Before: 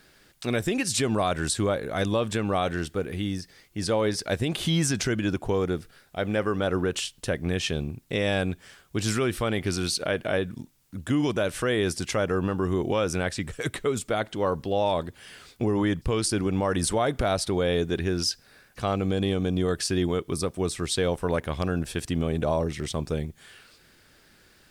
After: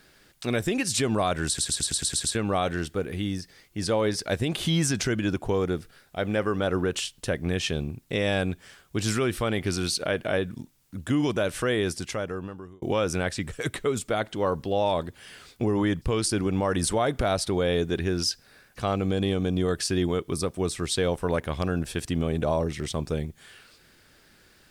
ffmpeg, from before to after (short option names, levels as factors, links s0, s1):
-filter_complex "[0:a]asplit=10[s0][s1][s2][s3][s4][s5][s6][s7][s8][s9];[s0]atrim=end=1.582[s10];[s1]atrim=start=1.468:end=1.582[s11];[s2]atrim=start=1.468:end=1.582[s12];[s3]atrim=start=1.468:end=1.582[s13];[s4]atrim=start=1.468:end=1.582[s14];[s5]atrim=start=1.468:end=1.582[s15];[s6]atrim=start=1.468:end=1.582[s16];[s7]atrim=start=1.468:end=1.582[s17];[s8]atrim=start=2.348:end=12.82,asetpts=PTS-STARTPTS,afade=t=out:st=9.352:d=1.12[s18];[s9]atrim=start=12.82,asetpts=PTS-STARTPTS,afade=t=in:d=0.004:c=hsin[s19];[s10][s11]acrossfade=d=0.004:c1=hsin:c2=hsin[s20];[s20][s12]acrossfade=d=0.004:c1=hsin:c2=hsin[s21];[s21][s13]acrossfade=d=0.004:c1=hsin:c2=hsin[s22];[s22][s14]acrossfade=d=0.004:c1=hsin:c2=hsin[s23];[s23][s15]acrossfade=d=0.004:c1=hsin:c2=hsin[s24];[s24][s16]acrossfade=d=0.004:c1=hsin:c2=hsin[s25];[s25][s17]acrossfade=d=0.004:c1=hsin:c2=hsin[s26];[s18][s19]concat=n=2:v=0:a=1[s27];[s26][s27]acrossfade=d=0.004:c1=hsin:c2=hsin"